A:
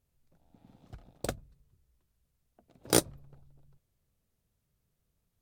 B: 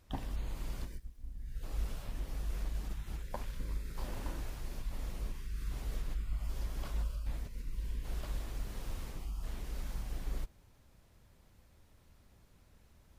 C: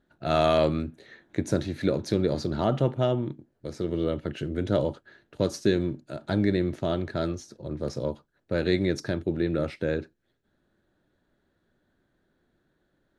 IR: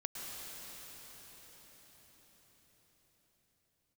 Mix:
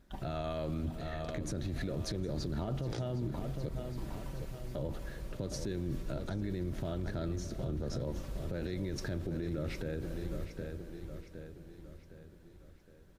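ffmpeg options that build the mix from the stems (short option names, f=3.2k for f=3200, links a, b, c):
-filter_complex "[0:a]lowpass=f=5.7k:w=0.5412,lowpass=f=5.7k:w=1.3066,volume=-9dB[a];[1:a]aecho=1:1:5.2:0.75,volume=-7dB,asplit=2[b][c];[c]volume=-7.5dB[d];[2:a]lowshelf=f=160:g=11.5,acompressor=threshold=-25dB:ratio=6,volume=-1dB,asplit=3[e][f][g];[e]atrim=end=3.69,asetpts=PTS-STARTPTS,afade=t=out:st=3.686:d=0.004:c=hsin[h];[f]atrim=start=3.69:end=4.75,asetpts=PTS-STARTPTS,volume=0[i];[g]atrim=start=4.75,asetpts=PTS-STARTPTS,afade=t=in:d=0.004:c=hsin[j];[h][i][j]concat=n=3:v=0:a=1,asplit=3[k][l][m];[l]volume=-16.5dB[n];[m]volume=-12dB[o];[3:a]atrim=start_sample=2205[p];[n][p]afir=irnorm=-1:irlink=0[q];[d][o]amix=inputs=2:normalize=0,aecho=0:1:763|1526|2289|3052|3815|4578|5341:1|0.47|0.221|0.104|0.0488|0.0229|0.0108[r];[a][b][k][q][r]amix=inputs=5:normalize=0,alimiter=level_in=4dB:limit=-24dB:level=0:latency=1:release=62,volume=-4dB"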